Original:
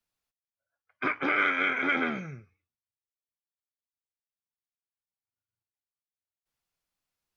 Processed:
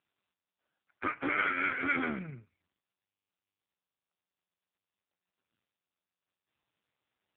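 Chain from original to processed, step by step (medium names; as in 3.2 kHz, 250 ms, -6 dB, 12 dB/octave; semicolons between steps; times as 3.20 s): 1.13–1.70 s: peaking EQ 130 Hz +9.5 dB 0.51 oct; trim -2 dB; AMR-NB 5.9 kbps 8 kHz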